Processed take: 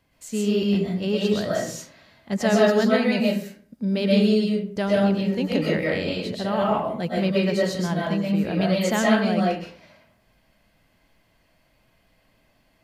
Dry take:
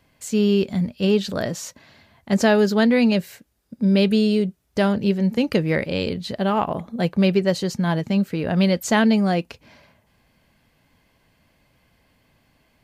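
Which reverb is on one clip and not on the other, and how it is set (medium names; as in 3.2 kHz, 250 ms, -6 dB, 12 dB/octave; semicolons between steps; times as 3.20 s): algorithmic reverb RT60 0.49 s, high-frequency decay 0.65×, pre-delay 85 ms, DRR -4.5 dB; trim -6.5 dB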